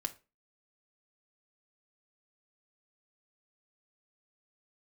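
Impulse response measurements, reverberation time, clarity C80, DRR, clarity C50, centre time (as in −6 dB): 0.30 s, 24.0 dB, 4.5 dB, 17.5 dB, 6 ms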